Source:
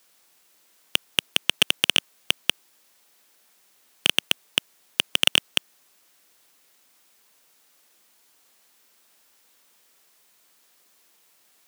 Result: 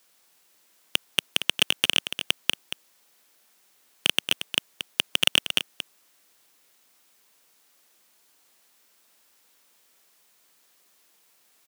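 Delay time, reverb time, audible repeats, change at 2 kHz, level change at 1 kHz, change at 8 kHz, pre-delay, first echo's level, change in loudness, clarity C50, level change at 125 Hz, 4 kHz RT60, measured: 229 ms, no reverb, 1, -1.5 dB, -1.5 dB, -1.5 dB, no reverb, -10.0 dB, -2.0 dB, no reverb, -1.5 dB, no reverb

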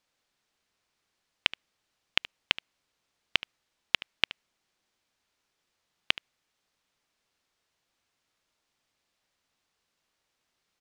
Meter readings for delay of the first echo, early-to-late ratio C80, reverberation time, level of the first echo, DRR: 74 ms, no reverb, no reverb, -17.5 dB, no reverb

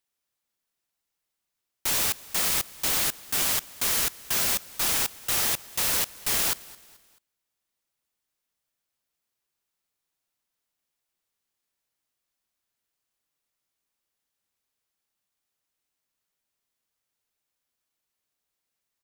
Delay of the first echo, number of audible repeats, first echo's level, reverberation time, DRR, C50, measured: 217 ms, 2, -21.5 dB, no reverb, no reverb, no reverb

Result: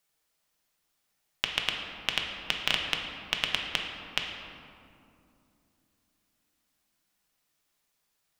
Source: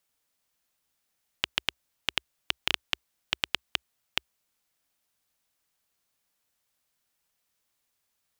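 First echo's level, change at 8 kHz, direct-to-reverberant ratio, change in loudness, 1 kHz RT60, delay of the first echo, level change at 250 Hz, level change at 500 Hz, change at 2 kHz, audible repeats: no echo, +1.0 dB, 1.0 dB, +1.5 dB, 2.4 s, no echo, +3.5 dB, +3.0 dB, +2.0 dB, no echo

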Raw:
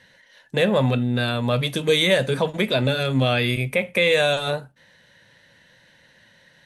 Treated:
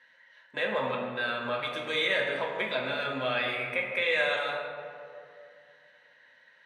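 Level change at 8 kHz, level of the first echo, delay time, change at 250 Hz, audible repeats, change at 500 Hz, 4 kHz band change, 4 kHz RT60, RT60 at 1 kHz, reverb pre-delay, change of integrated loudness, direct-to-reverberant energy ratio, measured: under -15 dB, no echo, no echo, -16.5 dB, no echo, -10.0 dB, -9.5 dB, 1.1 s, 2.2 s, 3 ms, -8.5 dB, -1.0 dB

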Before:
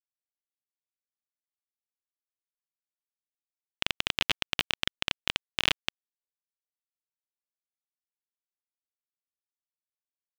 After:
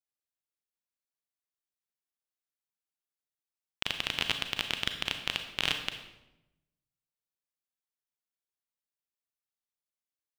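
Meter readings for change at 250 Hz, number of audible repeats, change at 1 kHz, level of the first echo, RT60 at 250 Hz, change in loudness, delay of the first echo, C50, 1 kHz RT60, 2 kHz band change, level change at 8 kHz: -1.5 dB, no echo, -2.0 dB, no echo, 1.2 s, -2.0 dB, no echo, 8.0 dB, 0.90 s, -2.0 dB, -2.0 dB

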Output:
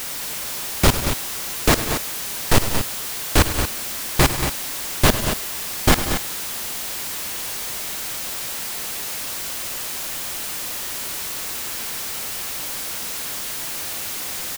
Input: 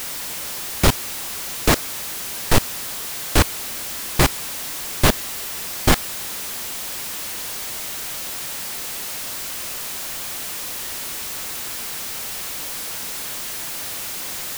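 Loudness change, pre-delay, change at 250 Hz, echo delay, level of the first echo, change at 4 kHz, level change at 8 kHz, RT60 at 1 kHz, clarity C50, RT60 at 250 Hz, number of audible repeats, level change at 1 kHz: +1.0 dB, no reverb, +1.0 dB, 60 ms, -19.5 dB, +1.0 dB, +1.0 dB, no reverb, no reverb, no reverb, 4, +1.0 dB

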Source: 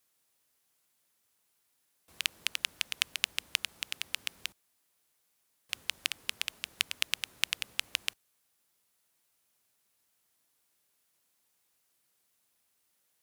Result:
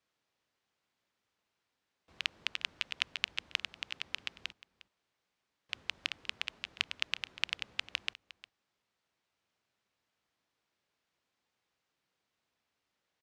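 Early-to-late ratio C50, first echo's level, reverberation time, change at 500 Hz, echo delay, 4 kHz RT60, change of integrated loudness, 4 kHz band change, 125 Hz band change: no reverb, -17.5 dB, no reverb, -0.5 dB, 356 ms, no reverb, -3.5 dB, -3.5 dB, no reading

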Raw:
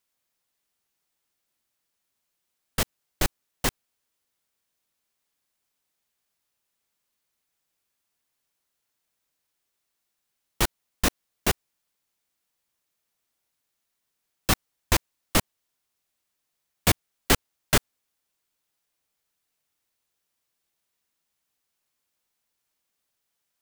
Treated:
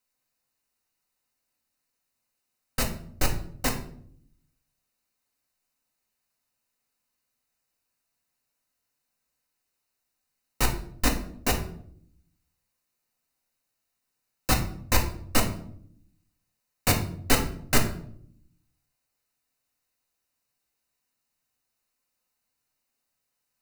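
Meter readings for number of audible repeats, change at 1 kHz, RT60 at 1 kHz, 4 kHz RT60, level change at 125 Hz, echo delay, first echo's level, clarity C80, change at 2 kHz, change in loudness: no echo, 0.0 dB, 0.55 s, 0.40 s, +1.5 dB, no echo, no echo, 13.0 dB, -1.0 dB, -1.0 dB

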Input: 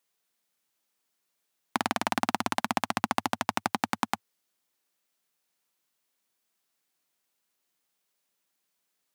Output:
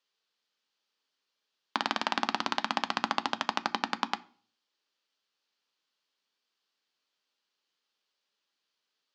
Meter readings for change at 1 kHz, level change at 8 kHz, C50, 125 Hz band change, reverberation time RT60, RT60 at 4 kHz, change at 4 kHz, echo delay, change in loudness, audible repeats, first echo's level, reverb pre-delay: -2.0 dB, -8.0 dB, 22.0 dB, -9.5 dB, 0.50 s, 0.55 s, +3.0 dB, no echo, -1.5 dB, no echo, no echo, 3 ms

